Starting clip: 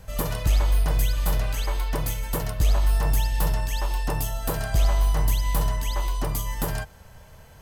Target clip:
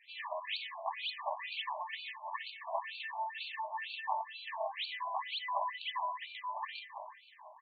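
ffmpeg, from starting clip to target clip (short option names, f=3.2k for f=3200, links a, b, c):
-filter_complex "[0:a]asuperstop=centerf=1400:order=12:qfactor=2.7,asplit=2[a][b];[b]adelay=332,lowpass=f=3.2k:p=1,volume=-9.5dB,asplit=2[c][d];[d]adelay=332,lowpass=f=3.2k:p=1,volume=0.51,asplit=2[e][f];[f]adelay=332,lowpass=f=3.2k:p=1,volume=0.51,asplit=2[g][h];[h]adelay=332,lowpass=f=3.2k:p=1,volume=0.51,asplit=2[i][j];[j]adelay=332,lowpass=f=3.2k:p=1,volume=0.51,asplit=2[k][l];[l]adelay=332,lowpass=f=3.2k:p=1,volume=0.51[m];[c][e][g][i][k][m]amix=inputs=6:normalize=0[n];[a][n]amix=inputs=2:normalize=0,afftfilt=real='re*between(b*sr/1024,790*pow(3300/790,0.5+0.5*sin(2*PI*2.1*pts/sr))/1.41,790*pow(3300/790,0.5+0.5*sin(2*PI*2.1*pts/sr))*1.41)':imag='im*between(b*sr/1024,790*pow(3300/790,0.5+0.5*sin(2*PI*2.1*pts/sr))/1.41,790*pow(3300/790,0.5+0.5*sin(2*PI*2.1*pts/sr))*1.41)':win_size=1024:overlap=0.75,volume=1dB"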